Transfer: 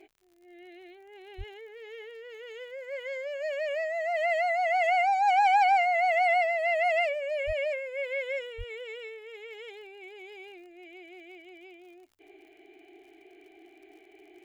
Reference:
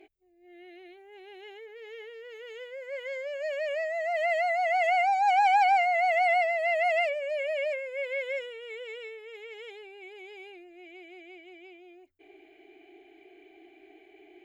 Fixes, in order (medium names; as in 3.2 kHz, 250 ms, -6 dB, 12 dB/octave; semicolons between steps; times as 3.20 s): de-click; de-plosive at 1.37/7.46/8.57 s